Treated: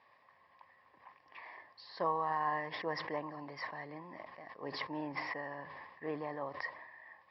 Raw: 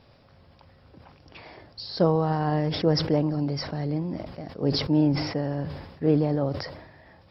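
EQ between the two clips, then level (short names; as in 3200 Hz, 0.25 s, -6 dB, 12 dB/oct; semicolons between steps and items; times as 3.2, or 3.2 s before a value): double band-pass 1400 Hz, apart 0.77 oct; +4.0 dB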